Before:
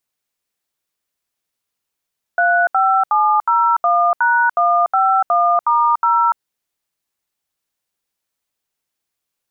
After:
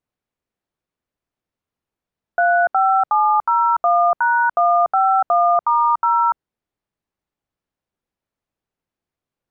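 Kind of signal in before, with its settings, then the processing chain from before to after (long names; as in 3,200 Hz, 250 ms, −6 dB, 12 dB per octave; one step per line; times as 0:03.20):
touch tones "35701#151*0", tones 291 ms, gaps 74 ms, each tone −14 dBFS
low-pass filter 1,200 Hz 6 dB per octave
low-shelf EQ 420 Hz +7 dB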